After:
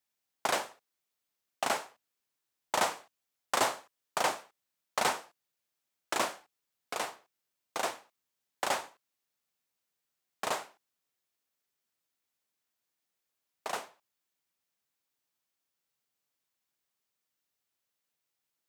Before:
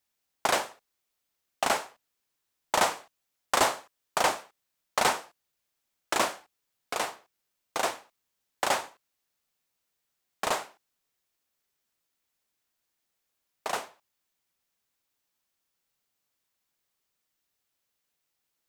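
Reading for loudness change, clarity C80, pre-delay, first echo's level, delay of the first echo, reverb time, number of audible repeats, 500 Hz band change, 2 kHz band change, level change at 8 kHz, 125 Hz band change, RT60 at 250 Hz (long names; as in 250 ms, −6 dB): −4.5 dB, no reverb audible, no reverb audible, no echo audible, no echo audible, no reverb audible, no echo audible, −4.5 dB, −4.5 dB, −4.5 dB, −5.5 dB, no reverb audible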